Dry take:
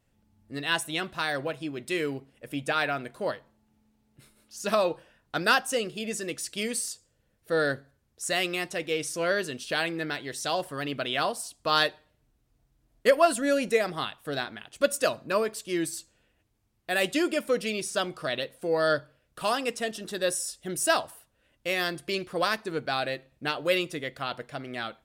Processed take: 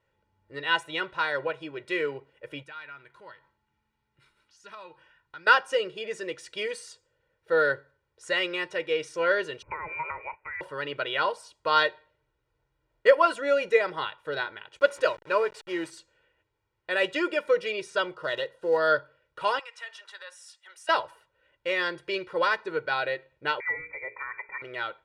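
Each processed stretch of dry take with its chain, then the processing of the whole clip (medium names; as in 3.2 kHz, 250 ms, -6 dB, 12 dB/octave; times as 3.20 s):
2.63–5.47 s: peaking EQ 520 Hz -13 dB 1 oct + compression 2:1, threshold -54 dBFS
9.62–10.61 s: tilt EQ +4 dB/octave + compression 10:1, threshold -29 dBFS + frequency inversion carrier 2.7 kHz
14.79–15.90 s: send-on-delta sampling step -39.5 dBFS + bass shelf 83 Hz -8.5 dB
18.14–18.81 s: block-companded coder 5-bit + band-stop 2.3 kHz, Q 5.2 + tape noise reduction on one side only decoder only
19.59–20.89 s: compression, threshold -32 dBFS + high-pass 860 Hz 24 dB/octave + three bands expanded up and down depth 40%
23.60–24.62 s: frequency inversion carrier 2.5 kHz + hum notches 60/120/180/240/300/360/420/480 Hz + compression 2:1, threshold -37 dBFS
whole clip: low-pass 1.7 kHz 12 dB/octave; tilt EQ +3.5 dB/octave; comb 2.1 ms, depth 83%; trim +1.5 dB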